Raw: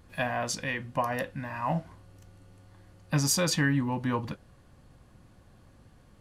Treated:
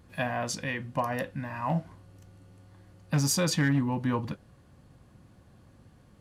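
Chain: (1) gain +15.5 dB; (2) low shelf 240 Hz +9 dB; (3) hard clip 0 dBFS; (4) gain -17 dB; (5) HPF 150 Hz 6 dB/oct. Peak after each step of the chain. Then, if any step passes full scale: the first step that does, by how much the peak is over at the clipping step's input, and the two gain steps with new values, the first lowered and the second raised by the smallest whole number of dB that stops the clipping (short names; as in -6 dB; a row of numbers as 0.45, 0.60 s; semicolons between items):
+4.5, +6.0, 0.0, -17.0, -14.0 dBFS; step 1, 6.0 dB; step 1 +9.5 dB, step 4 -11 dB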